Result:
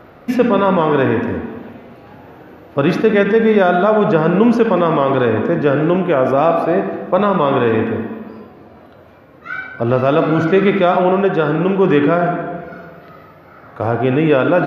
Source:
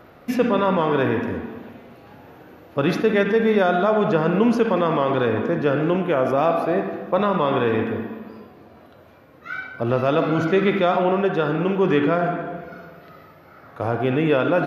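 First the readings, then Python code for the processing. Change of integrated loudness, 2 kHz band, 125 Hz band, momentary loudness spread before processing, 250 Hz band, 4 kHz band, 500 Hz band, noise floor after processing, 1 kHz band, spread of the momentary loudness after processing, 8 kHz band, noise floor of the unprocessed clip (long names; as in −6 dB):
+6.0 dB, +5.0 dB, +6.0 dB, 12 LU, +6.0 dB, +3.0 dB, +6.0 dB, −43 dBFS, +5.5 dB, 12 LU, can't be measured, −48 dBFS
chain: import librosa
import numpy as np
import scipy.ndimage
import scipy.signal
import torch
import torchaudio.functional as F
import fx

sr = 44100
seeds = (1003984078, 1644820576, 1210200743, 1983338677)

y = fx.high_shelf(x, sr, hz=3900.0, db=-7.0)
y = y * librosa.db_to_amplitude(6.0)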